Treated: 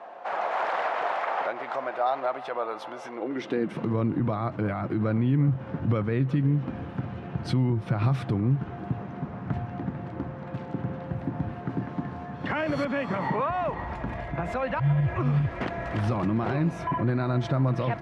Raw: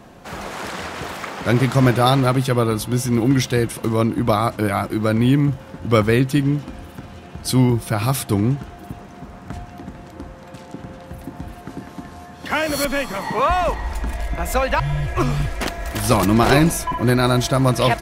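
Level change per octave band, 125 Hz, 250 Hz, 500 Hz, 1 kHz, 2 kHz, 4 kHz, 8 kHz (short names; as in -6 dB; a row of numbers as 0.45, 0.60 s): -6.0 dB, -8.5 dB, -9.0 dB, -7.0 dB, -9.5 dB, -17.0 dB, under -25 dB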